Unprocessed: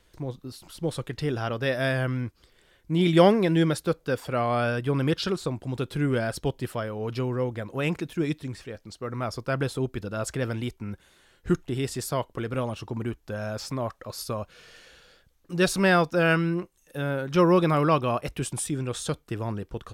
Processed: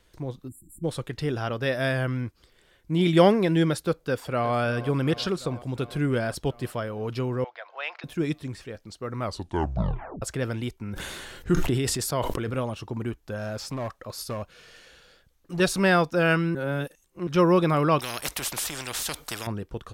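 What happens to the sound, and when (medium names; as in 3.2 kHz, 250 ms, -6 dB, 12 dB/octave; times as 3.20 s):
0.48–0.84 s: spectral selection erased 360–7100 Hz
4.03–4.54 s: echo throw 360 ms, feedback 75%, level -15 dB
7.44–8.04 s: elliptic band-pass 680–4700 Hz, stop band 50 dB
9.20 s: tape stop 1.02 s
10.87–12.59 s: decay stretcher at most 24 dB/s
13.38–15.60 s: overload inside the chain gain 27 dB
16.55–17.27 s: reverse
17.99–19.47 s: spectrum-flattening compressor 4:1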